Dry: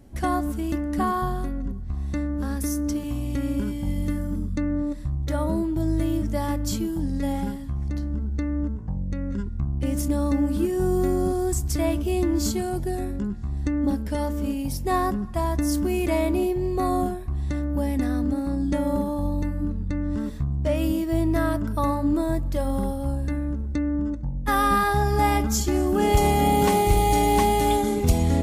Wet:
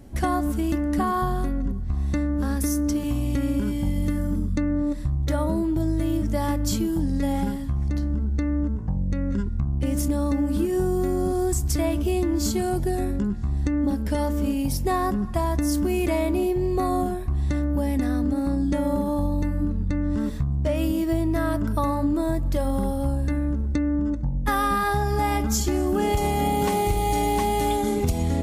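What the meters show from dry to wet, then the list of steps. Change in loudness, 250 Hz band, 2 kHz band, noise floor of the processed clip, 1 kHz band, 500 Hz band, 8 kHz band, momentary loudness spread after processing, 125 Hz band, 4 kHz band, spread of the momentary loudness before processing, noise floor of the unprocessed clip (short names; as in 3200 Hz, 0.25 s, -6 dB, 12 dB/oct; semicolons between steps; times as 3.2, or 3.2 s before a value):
+0.5 dB, +1.0 dB, -1.0 dB, -27 dBFS, -1.5 dB, -0.5 dB, 0.0 dB, 3 LU, +1.0 dB, -1.0 dB, 9 LU, -30 dBFS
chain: compressor, threshold -24 dBFS, peak gain reduction 11 dB; gain +4.5 dB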